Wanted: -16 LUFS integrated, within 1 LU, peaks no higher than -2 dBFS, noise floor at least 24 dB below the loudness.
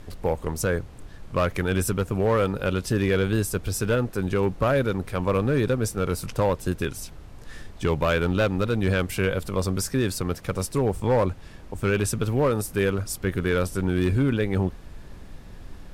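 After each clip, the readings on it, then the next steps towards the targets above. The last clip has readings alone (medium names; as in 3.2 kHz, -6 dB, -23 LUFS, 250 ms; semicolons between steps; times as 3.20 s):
clipped samples 1.2%; clipping level -15.0 dBFS; noise floor -43 dBFS; noise floor target -49 dBFS; loudness -25.0 LUFS; peak level -15.0 dBFS; loudness target -16.0 LUFS
-> clip repair -15 dBFS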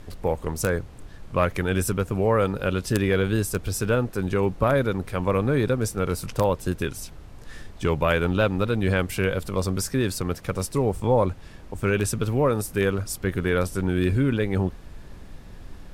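clipped samples 0.0%; noise floor -43 dBFS; noise floor target -49 dBFS
-> noise print and reduce 6 dB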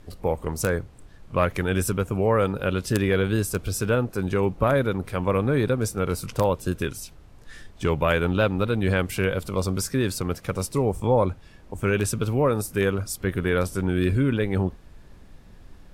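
noise floor -48 dBFS; noise floor target -49 dBFS
-> noise print and reduce 6 dB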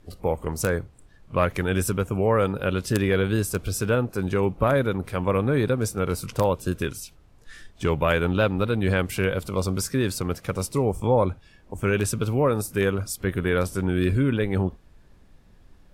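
noise floor -54 dBFS; loudness -24.5 LUFS; peak level -6.0 dBFS; loudness target -16.0 LUFS
-> trim +8.5 dB; peak limiter -2 dBFS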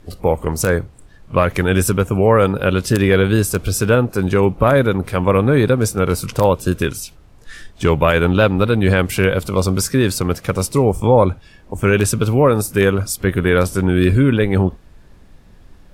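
loudness -16.5 LUFS; peak level -2.0 dBFS; noise floor -45 dBFS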